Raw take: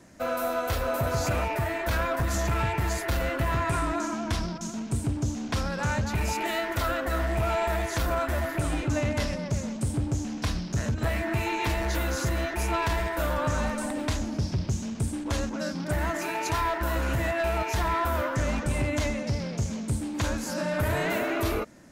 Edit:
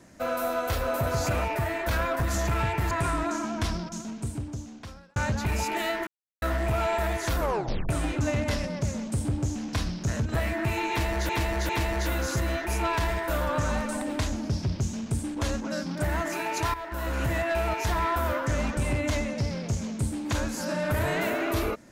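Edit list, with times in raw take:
2.91–3.6 cut
4.41–5.85 fade out
6.76–7.11 mute
8.08 tape stop 0.50 s
11.58–11.98 loop, 3 plays
16.63–17.15 fade in, from -12.5 dB

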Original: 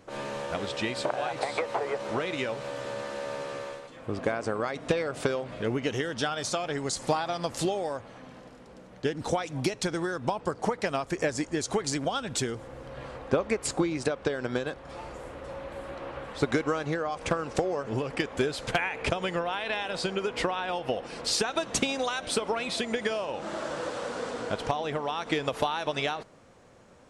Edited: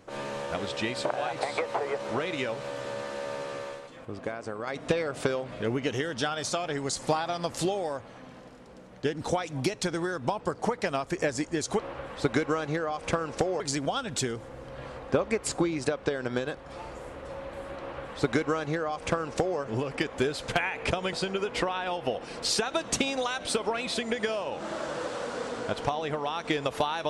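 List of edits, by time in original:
4.05–4.67 gain -6 dB
15.97–17.78 copy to 11.79
19.32–19.95 cut

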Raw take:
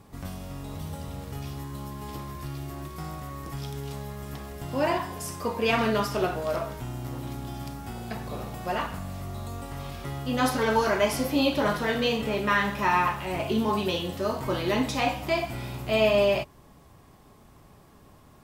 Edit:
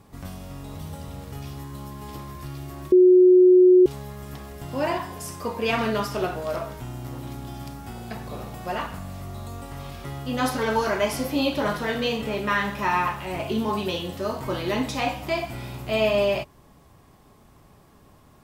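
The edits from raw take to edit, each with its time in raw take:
2.92–3.86 bleep 365 Hz -10 dBFS

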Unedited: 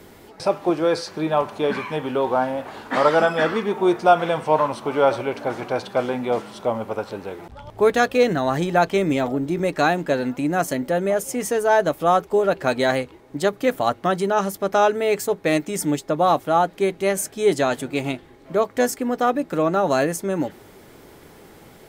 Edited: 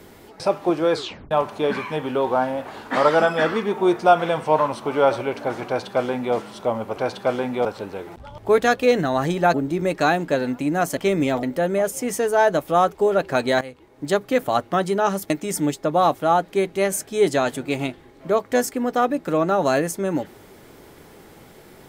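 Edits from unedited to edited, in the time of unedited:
0.95 tape stop 0.36 s
5.67–6.35 copy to 6.97
8.86–9.32 move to 10.75
12.93–13.39 fade in, from -17.5 dB
14.62–15.55 cut

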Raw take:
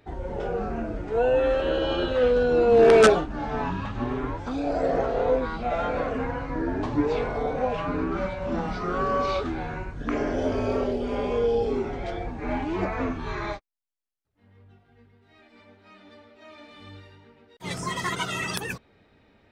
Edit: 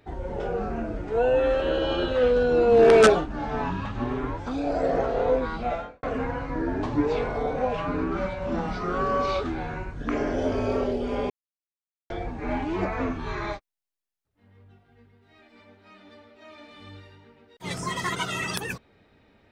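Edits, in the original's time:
5.7–6.03 fade out quadratic
11.3–12.1 mute

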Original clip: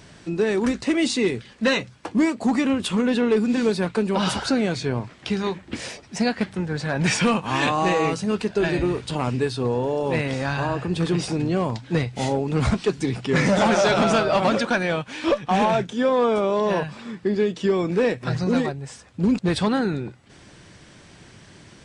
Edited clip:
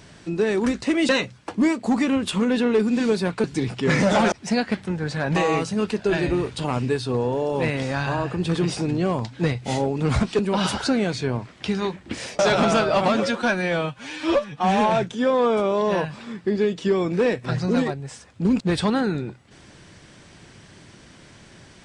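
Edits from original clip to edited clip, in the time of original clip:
1.09–1.66 cut
4.01–6.01 swap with 12.9–13.78
7.05–7.87 cut
14.47–15.68 stretch 1.5×

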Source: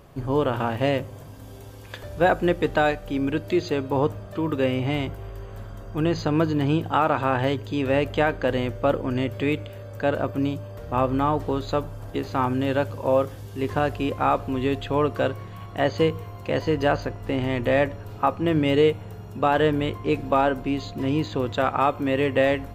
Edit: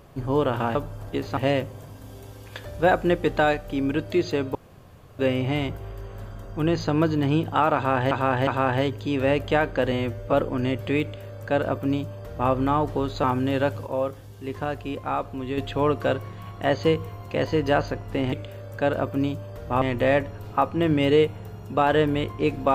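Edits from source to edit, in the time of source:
3.93–4.57 room tone
7.13–7.49 loop, 3 plays
8.58–8.85 stretch 1.5×
9.54–11.03 copy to 17.47
11.76–12.38 move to 0.75
13.01–14.72 gain -5.5 dB

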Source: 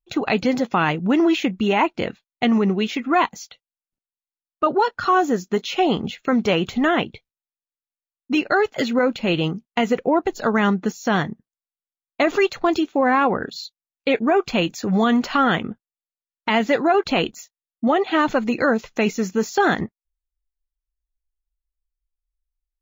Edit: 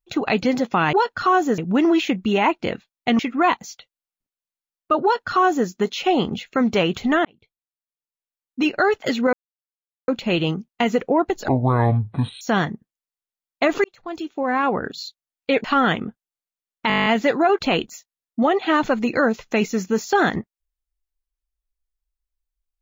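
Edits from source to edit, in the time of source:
2.54–2.91 cut
4.75–5.4 copy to 0.93
6.97–8.4 fade in
9.05 insert silence 0.75 s
10.45–10.99 speed 58%
12.42–13.49 fade in
14.22–15.27 cut
16.51 stutter 0.02 s, 10 plays

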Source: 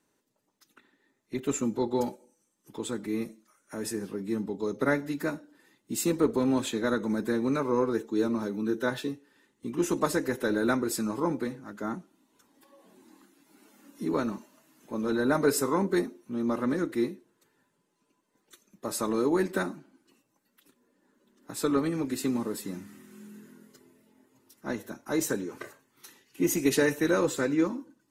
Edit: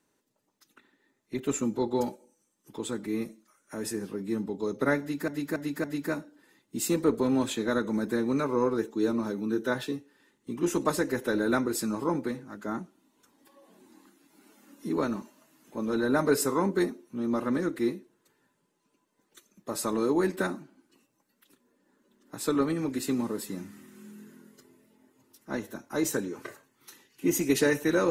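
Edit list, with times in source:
5–5.28 loop, 4 plays

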